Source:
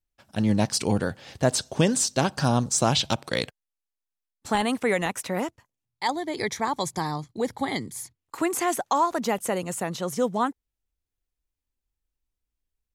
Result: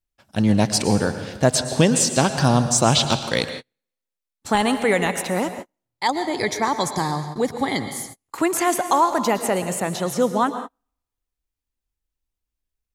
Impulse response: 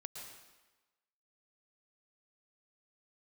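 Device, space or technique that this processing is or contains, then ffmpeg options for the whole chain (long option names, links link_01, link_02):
keyed gated reverb: -filter_complex "[0:a]asplit=3[link_01][link_02][link_03];[1:a]atrim=start_sample=2205[link_04];[link_02][link_04]afir=irnorm=-1:irlink=0[link_05];[link_03]apad=whole_len=570693[link_06];[link_05][link_06]sidechaingate=range=-42dB:threshold=-46dB:ratio=16:detection=peak,volume=3dB[link_07];[link_01][link_07]amix=inputs=2:normalize=0"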